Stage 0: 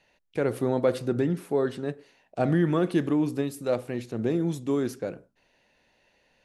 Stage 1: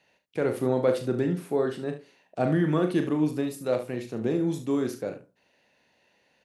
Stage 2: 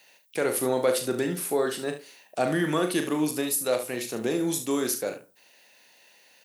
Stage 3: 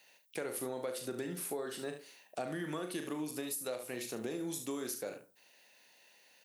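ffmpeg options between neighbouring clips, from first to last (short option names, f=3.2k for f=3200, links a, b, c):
-filter_complex "[0:a]highpass=99,asplit=2[a][b];[b]aecho=0:1:39|72:0.398|0.266[c];[a][c]amix=inputs=2:normalize=0,volume=-1dB"
-filter_complex "[0:a]aemphasis=mode=production:type=riaa,asplit=2[a][b];[b]alimiter=limit=-24dB:level=0:latency=1:release=343,volume=-1dB[c];[a][c]amix=inputs=2:normalize=0"
-af "acompressor=threshold=-29dB:ratio=6,volume=-6.5dB"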